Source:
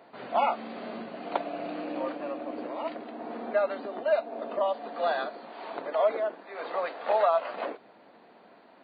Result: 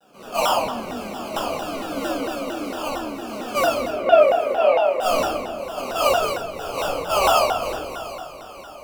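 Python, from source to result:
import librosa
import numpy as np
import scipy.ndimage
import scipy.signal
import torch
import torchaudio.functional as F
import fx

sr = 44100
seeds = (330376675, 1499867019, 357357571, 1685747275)

y = fx.env_lowpass(x, sr, base_hz=500.0, full_db=-25.0)
y = fx.sample_hold(y, sr, seeds[0], rate_hz=1900.0, jitter_pct=0)
y = fx.cabinet(y, sr, low_hz=350.0, low_slope=12, high_hz=2800.0, hz=(420.0, 640.0, 1100.0, 2100.0), db=(6, 9, -4, 6), at=(3.88, 5.0))
y = fx.echo_diffused(y, sr, ms=734, feedback_pct=46, wet_db=-15.0)
y = fx.room_shoebox(y, sr, seeds[1], volume_m3=630.0, walls='mixed', distance_m=6.5)
y = fx.vibrato_shape(y, sr, shape='saw_down', rate_hz=4.4, depth_cents=250.0)
y = y * librosa.db_to_amplitude(-7.0)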